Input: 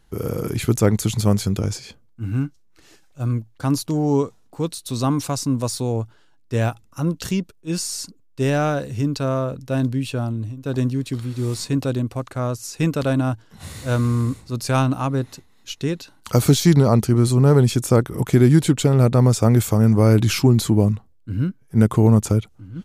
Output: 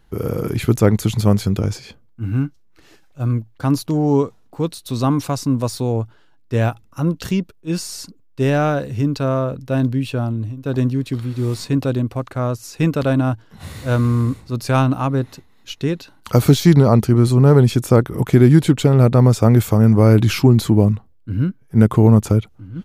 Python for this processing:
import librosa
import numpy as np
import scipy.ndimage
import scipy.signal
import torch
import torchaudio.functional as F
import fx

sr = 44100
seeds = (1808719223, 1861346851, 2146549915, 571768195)

y = fx.peak_eq(x, sr, hz=7900.0, db=-7.5, octaves=1.5)
y = y * librosa.db_to_amplitude(3.0)